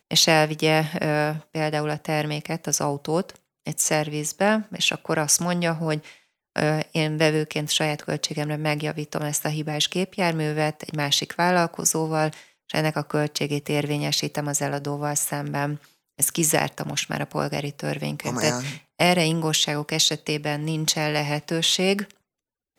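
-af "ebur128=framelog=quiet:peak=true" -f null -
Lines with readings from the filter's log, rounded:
Integrated loudness:
  I:         -23.6 LUFS
  Threshold: -33.8 LUFS
Loudness range:
  LRA:         2.8 LU
  Threshold: -44.0 LUFS
  LRA low:   -25.3 LUFS
  LRA high:  -22.5 LUFS
True peak:
  Peak:       -6.1 dBFS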